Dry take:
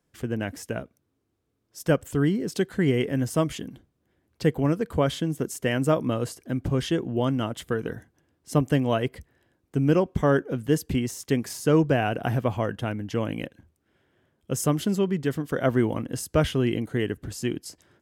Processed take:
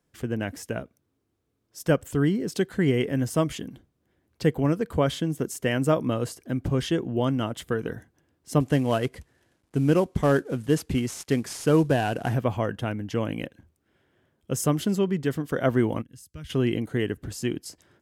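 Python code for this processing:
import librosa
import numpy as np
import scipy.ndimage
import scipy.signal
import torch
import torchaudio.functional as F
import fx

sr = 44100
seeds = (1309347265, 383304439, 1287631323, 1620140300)

y = fx.cvsd(x, sr, bps=64000, at=(8.6, 12.34))
y = fx.tone_stack(y, sr, knobs='6-0-2', at=(16.01, 16.49), fade=0.02)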